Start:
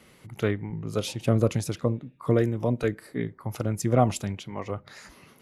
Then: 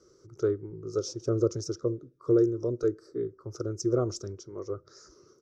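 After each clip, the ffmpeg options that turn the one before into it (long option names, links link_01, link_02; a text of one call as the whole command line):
ffmpeg -i in.wav -af "firequalizer=gain_entry='entry(110,0);entry(220,-11);entry(360,14);entry(800,-16);entry(1300,4);entry(1900,-19);entry(2700,-23);entry(5600,13);entry(9800,-21)':delay=0.05:min_phase=1,volume=-7.5dB" out.wav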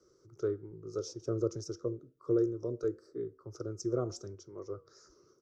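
ffmpeg -i in.wav -filter_complex "[0:a]acrossover=split=120|1100[link_01][link_02][link_03];[link_02]crystalizer=i=7.5:c=0[link_04];[link_01][link_04][link_03]amix=inputs=3:normalize=0,flanger=delay=5.5:depth=2.1:regen=-89:speed=0.91:shape=sinusoidal,volume=-2.5dB" out.wav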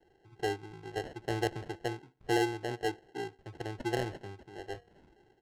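ffmpeg -i in.wav -af "acrusher=samples=37:mix=1:aa=0.000001,adynamicsmooth=sensitivity=2.5:basefreq=5100" out.wav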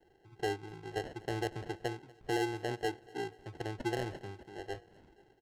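ffmpeg -i in.wav -af "alimiter=level_in=1dB:limit=-24dB:level=0:latency=1:release=151,volume=-1dB,aecho=1:1:240|480|720|960:0.0668|0.0368|0.0202|0.0111" out.wav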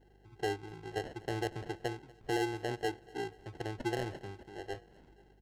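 ffmpeg -i in.wav -af "aeval=exprs='val(0)+0.000631*(sin(2*PI*50*n/s)+sin(2*PI*2*50*n/s)/2+sin(2*PI*3*50*n/s)/3+sin(2*PI*4*50*n/s)/4+sin(2*PI*5*50*n/s)/5)':channel_layout=same" out.wav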